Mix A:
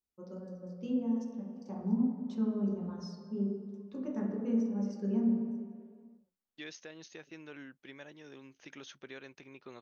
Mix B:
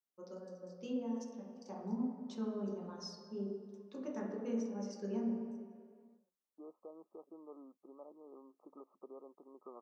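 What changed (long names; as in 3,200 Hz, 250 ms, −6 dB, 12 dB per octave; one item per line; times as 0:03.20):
second voice: add linear-phase brick-wall band-pass 170–1,300 Hz
master: add bass and treble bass −14 dB, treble +6 dB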